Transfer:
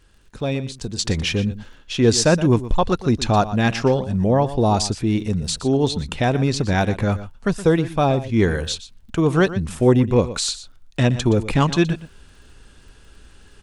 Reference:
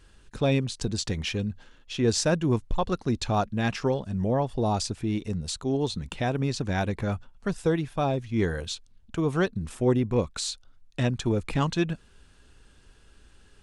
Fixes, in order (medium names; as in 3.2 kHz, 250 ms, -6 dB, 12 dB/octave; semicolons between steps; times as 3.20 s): de-click; inverse comb 120 ms -14.5 dB; gain correction -8 dB, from 0.99 s